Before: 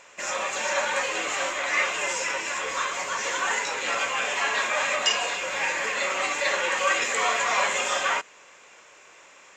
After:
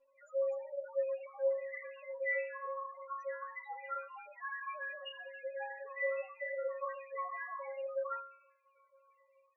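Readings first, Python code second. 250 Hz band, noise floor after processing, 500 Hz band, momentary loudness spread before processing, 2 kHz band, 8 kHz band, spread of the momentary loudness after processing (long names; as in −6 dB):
below −40 dB, −71 dBFS, −6.0 dB, 5 LU, −17.5 dB, below −40 dB, 9 LU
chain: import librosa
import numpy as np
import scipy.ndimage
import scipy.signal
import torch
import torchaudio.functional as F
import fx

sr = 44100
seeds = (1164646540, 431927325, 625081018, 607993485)

y = fx.spec_topn(x, sr, count=2)
y = fx.stiff_resonator(y, sr, f0_hz=270.0, decay_s=0.6, stiffness=0.002)
y = F.gain(torch.from_numpy(y), 12.0).numpy()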